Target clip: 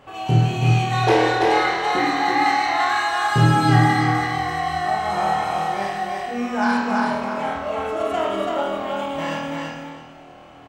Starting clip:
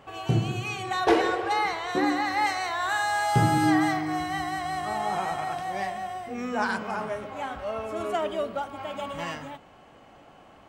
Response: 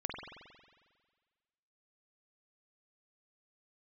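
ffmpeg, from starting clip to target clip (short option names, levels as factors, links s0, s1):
-filter_complex "[0:a]asettb=1/sr,asplit=3[s0][s1][s2];[s0]atrim=end=2.324[s3];[s1]atrim=start=2.32:end=5.1,asetpts=PTS-STARTPTS,afade=t=in:d=0.004:c=qsin,afade=t=out:st=2.776:d=0.004:c=qsin,highshelf=f=6300:g=-6[s4];[s2]atrim=start=5.096[s5];[s3][s4]acrossfade=d=0.004:c1=hsin:c2=qsin[s6];[s6][s5]acrossfade=d=0.004:c1=qsin:c2=hsin,aecho=1:1:333|666|999:0.708|0.142|0.0283[s7];[1:a]atrim=start_sample=2205,asetrate=79380,aresample=44100[s8];[s7][s8]afir=irnorm=-1:irlink=0,volume=2.66"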